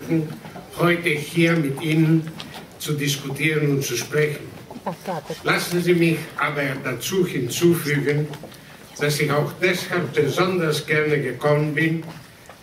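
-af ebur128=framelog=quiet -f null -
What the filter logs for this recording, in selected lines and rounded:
Integrated loudness:
  I:         -21.4 LUFS
  Threshold: -32.0 LUFS
Loudness range:
  LRA:         2.0 LU
  Threshold: -42.0 LUFS
  LRA low:   -23.0 LUFS
  LRA high:  -21.0 LUFS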